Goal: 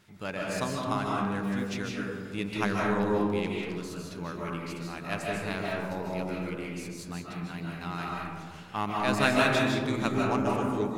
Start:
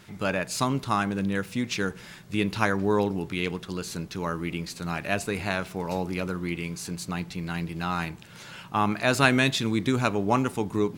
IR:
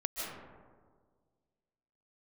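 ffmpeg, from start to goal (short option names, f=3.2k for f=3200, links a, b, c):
-filter_complex "[0:a]acontrast=29,aeval=exprs='0.891*(cos(1*acos(clip(val(0)/0.891,-1,1)))-cos(1*PI/2))+0.112*(cos(3*acos(clip(val(0)/0.891,-1,1)))-cos(3*PI/2))+0.00794*(cos(4*acos(clip(val(0)/0.891,-1,1)))-cos(4*PI/2))+0.0282*(cos(7*acos(clip(val(0)/0.891,-1,1)))-cos(7*PI/2))':c=same[a];[1:a]atrim=start_sample=2205[b];[a][b]afir=irnorm=-1:irlink=0,volume=-6.5dB"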